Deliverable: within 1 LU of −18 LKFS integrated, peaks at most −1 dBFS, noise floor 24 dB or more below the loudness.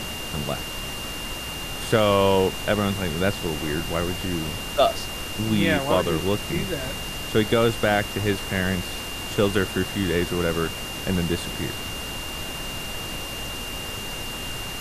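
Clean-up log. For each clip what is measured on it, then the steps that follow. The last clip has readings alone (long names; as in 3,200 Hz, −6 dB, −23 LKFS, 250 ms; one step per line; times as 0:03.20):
interfering tone 2,800 Hz; level of the tone −34 dBFS; background noise floor −33 dBFS; target noise floor −49 dBFS; integrated loudness −25.0 LKFS; sample peak −6.0 dBFS; target loudness −18.0 LKFS
→ notch filter 2,800 Hz, Q 30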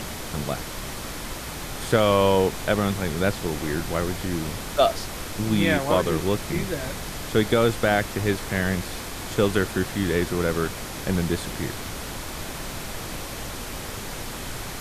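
interfering tone none found; background noise floor −34 dBFS; target noise floor −50 dBFS
→ noise reduction from a noise print 16 dB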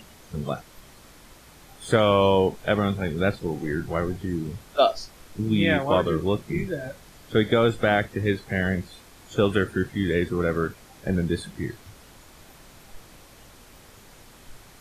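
background noise floor −50 dBFS; integrated loudness −24.5 LKFS; sample peak −6.5 dBFS; target loudness −18.0 LKFS
→ level +6.5 dB
brickwall limiter −1 dBFS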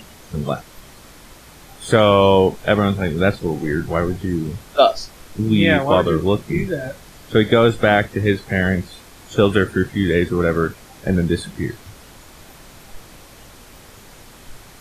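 integrated loudness −18.5 LKFS; sample peak −1.0 dBFS; background noise floor −44 dBFS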